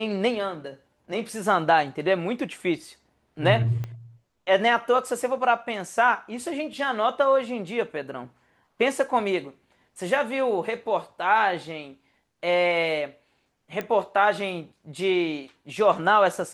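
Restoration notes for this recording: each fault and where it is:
3.84 pop -21 dBFS
13.81 pop -17 dBFS

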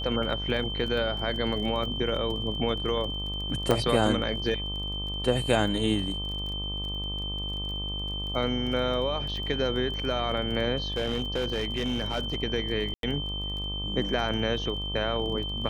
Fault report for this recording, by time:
buzz 50 Hz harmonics 25 -35 dBFS
crackle 21/s -35 dBFS
tone 3100 Hz -33 dBFS
3.71 pop -11 dBFS
10.77–12.36 clipped -23.5 dBFS
12.94–13.03 gap 92 ms

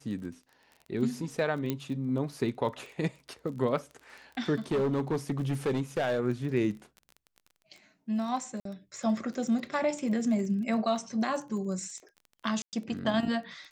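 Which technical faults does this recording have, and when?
crackle 23/s -39 dBFS
1.7 pop -16 dBFS
4.71–6.2 clipped -24 dBFS
8.6–8.65 gap 53 ms
12.62–12.73 gap 0.108 s

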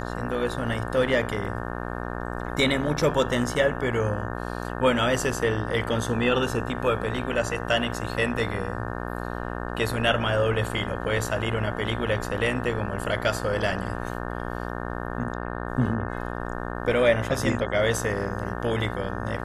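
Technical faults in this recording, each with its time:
buzz 60 Hz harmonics 30 -32 dBFS

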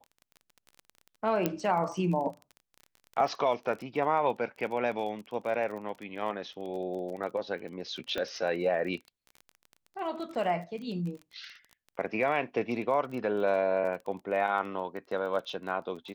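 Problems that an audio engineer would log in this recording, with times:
crackle 23/s -38 dBFS
1.46 pop -13 dBFS
8.18 pop -19 dBFS

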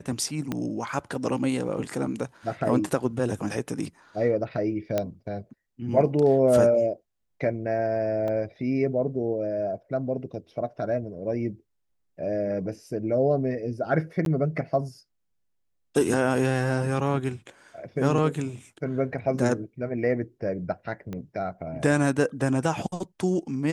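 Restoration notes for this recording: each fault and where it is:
0.52 pop -15 dBFS
4.98 pop -12 dBFS
8.28 gap 2.2 ms
14.25–14.26 gap 12 ms
21.13 pop -22 dBFS

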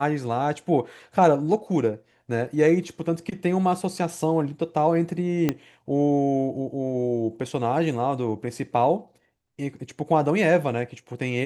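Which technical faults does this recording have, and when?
5.49 pop -9 dBFS

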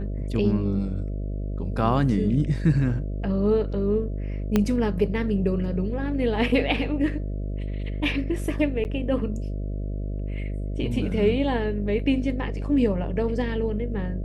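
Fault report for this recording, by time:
buzz 50 Hz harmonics 13 -29 dBFS
4.56 pop -8 dBFS
8.84–8.85 gap 9.5 ms

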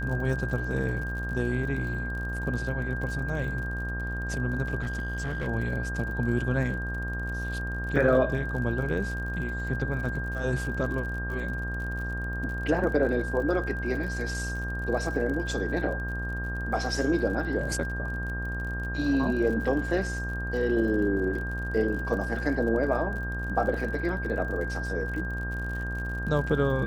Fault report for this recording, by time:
buzz 60 Hz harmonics 25 -33 dBFS
crackle 50/s -36 dBFS
tone 1600 Hz -34 dBFS
4.82–5.48 clipped -27 dBFS

